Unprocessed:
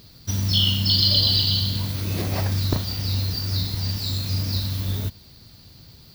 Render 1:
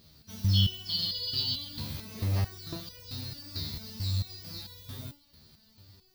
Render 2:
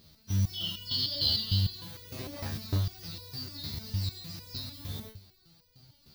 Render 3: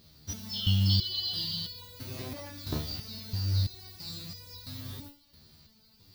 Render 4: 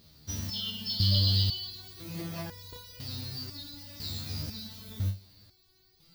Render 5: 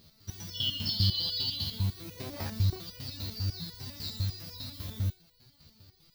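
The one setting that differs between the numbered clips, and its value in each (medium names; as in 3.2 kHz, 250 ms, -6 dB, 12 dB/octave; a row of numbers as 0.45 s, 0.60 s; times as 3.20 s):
resonator arpeggio, rate: 4.5 Hz, 6.6 Hz, 3 Hz, 2 Hz, 10 Hz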